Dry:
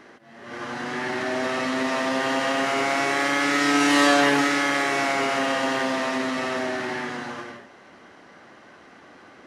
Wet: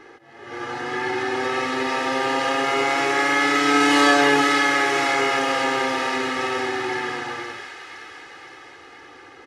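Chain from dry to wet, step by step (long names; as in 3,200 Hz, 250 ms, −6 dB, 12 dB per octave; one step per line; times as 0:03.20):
high-shelf EQ 5,200 Hz −5 dB
comb filter 2.4 ms, depth 97%
delay with a high-pass on its return 516 ms, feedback 60%, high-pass 1,500 Hz, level −7 dB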